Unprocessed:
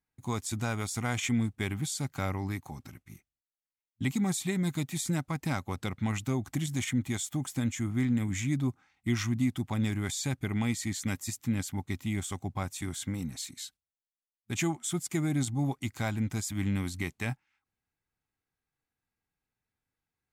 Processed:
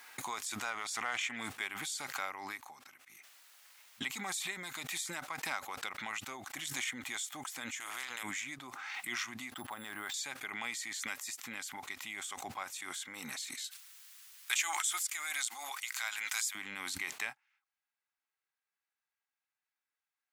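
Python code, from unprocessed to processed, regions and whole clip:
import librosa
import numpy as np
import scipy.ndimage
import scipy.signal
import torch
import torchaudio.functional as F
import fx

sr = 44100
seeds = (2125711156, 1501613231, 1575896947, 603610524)

y = fx.chain(x, sr, fx.high_shelf(hz=6300.0, db=-8.5),
    fx.doppler_dist(depth_ms=0.15), at=(0.7, 1.36))
y = fx.chain(y, sr, fx.highpass(hz=49.0, slope=12),
    fx.peak_eq(hz=220.0, db=-11.0, octaves=0.68),
    fx.spectral_comp(ratio=2.0), at=(7.8, 8.23))
y = fx.chain(y, sr, fx.lowpass(hz=3400.0, slope=12),
    fx.peak_eq(hz=2300.0, db=-11.5, octaves=0.3),
    fx.resample_bad(factor=4, down='none', up='hold'), at=(9.52, 10.14))
y = fx.chain(y, sr, fx.highpass(hz=1200.0, slope=12),
    fx.high_shelf(hz=4200.0, db=7.0), at=(13.64, 16.55))
y = scipy.signal.sosfilt(scipy.signal.butter(2, 1100.0, 'highpass', fs=sr, output='sos'), y)
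y = fx.high_shelf(y, sr, hz=4000.0, db=-7.0)
y = fx.pre_swell(y, sr, db_per_s=24.0)
y = F.gain(torch.from_numpy(y), 1.0).numpy()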